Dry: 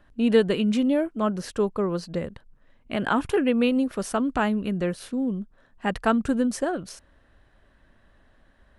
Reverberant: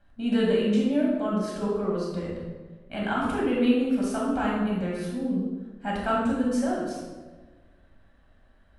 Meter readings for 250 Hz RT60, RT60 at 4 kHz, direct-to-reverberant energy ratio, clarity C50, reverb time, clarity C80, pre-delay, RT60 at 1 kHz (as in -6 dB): 1.6 s, 0.85 s, -5.5 dB, -0.5 dB, 1.4 s, 2.5 dB, 5 ms, 1.2 s